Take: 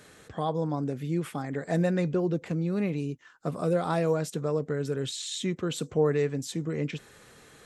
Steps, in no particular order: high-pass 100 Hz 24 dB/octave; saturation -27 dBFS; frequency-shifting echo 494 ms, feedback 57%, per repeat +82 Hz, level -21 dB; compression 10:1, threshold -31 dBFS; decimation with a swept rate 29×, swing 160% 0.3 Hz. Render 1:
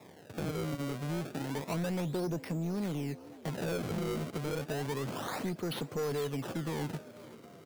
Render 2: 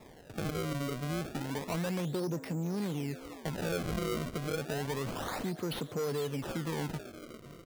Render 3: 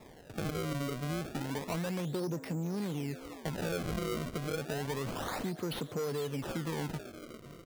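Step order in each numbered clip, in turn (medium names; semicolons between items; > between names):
decimation with a swept rate > high-pass > saturation > frequency-shifting echo > compression; frequency-shifting echo > saturation > compression > high-pass > decimation with a swept rate; frequency-shifting echo > saturation > high-pass > compression > decimation with a swept rate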